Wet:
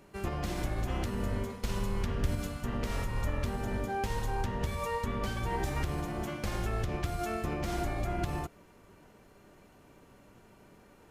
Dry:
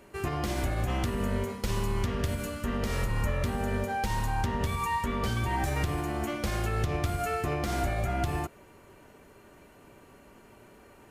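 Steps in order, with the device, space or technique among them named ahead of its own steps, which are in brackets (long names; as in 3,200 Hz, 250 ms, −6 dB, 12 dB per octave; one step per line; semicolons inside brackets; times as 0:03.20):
0:02.06–0:02.63: low-shelf EQ 190 Hz +5.5 dB
octave pedal (pitch-shifted copies added −12 semitones −2 dB)
level −5.5 dB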